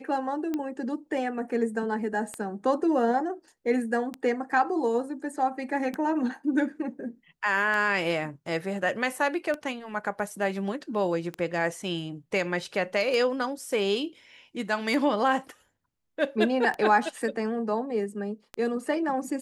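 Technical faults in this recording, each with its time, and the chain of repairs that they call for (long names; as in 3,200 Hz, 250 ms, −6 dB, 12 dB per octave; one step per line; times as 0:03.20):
scratch tick 33 1/3 rpm −18 dBFS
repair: click removal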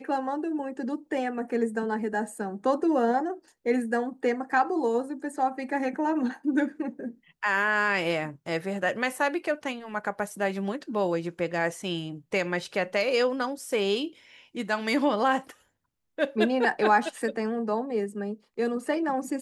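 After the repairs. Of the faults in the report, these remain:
none of them is left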